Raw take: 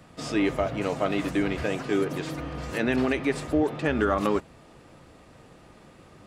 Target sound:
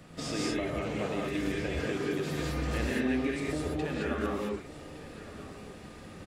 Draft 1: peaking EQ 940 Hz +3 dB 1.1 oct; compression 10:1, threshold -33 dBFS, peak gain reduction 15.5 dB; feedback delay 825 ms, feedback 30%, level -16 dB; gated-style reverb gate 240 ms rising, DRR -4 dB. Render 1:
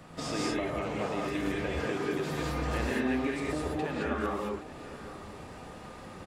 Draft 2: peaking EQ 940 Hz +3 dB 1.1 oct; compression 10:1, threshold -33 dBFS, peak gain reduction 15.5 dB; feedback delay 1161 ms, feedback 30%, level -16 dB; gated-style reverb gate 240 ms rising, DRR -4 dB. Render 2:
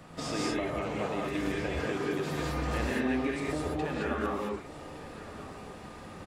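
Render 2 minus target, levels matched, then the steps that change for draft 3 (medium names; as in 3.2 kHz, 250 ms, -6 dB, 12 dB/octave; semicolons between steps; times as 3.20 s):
1 kHz band +4.0 dB
change: peaking EQ 940 Hz -4.5 dB 1.1 oct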